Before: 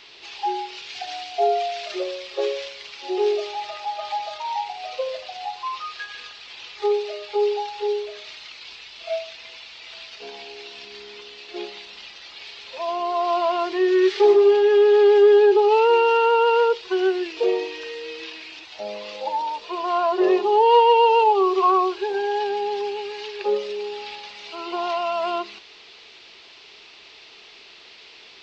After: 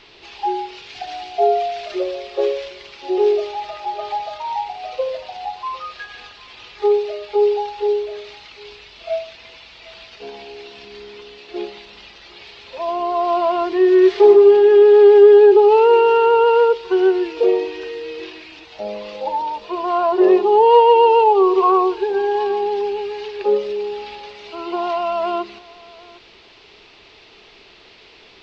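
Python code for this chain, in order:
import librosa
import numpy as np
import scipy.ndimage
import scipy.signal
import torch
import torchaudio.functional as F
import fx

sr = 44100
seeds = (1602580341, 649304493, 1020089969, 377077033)

y = fx.tilt_eq(x, sr, slope=-2.5)
y = y + 10.0 ** (-23.0 / 20.0) * np.pad(y, (int(755 * sr / 1000.0), 0))[:len(y)]
y = y * 10.0 ** (2.5 / 20.0)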